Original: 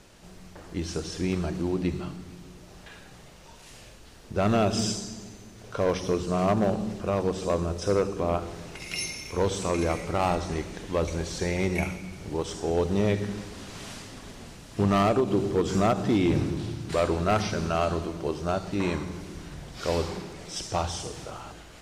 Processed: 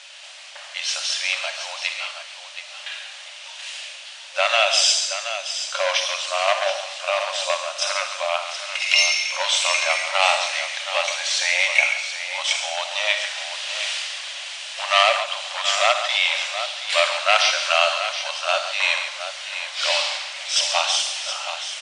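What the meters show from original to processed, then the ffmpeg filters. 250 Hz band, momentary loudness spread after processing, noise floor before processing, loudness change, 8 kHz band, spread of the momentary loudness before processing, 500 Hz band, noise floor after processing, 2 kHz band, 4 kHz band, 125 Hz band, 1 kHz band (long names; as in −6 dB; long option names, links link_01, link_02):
below −40 dB, 15 LU, −49 dBFS, +7.0 dB, +13.0 dB, 18 LU, +0.5 dB, −39 dBFS, +17.0 dB, +18.5 dB, below −40 dB, +6.5 dB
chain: -filter_complex "[0:a]afftfilt=real='re*between(b*sr/4096,530,10000)':imag='im*between(b*sr/4096,530,10000)':win_size=4096:overlap=0.75,equalizer=frequency=3000:width_type=o:width=1.4:gain=11.5,acrossover=split=1700[link_01][link_02];[link_02]acontrast=61[link_03];[link_01][link_03]amix=inputs=2:normalize=0,aecho=1:1:59|138|725:0.251|0.299|0.316,volume=3dB"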